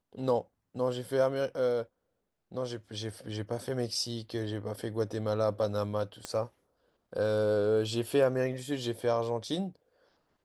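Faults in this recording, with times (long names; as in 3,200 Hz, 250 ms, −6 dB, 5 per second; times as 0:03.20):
0:06.25: click −21 dBFS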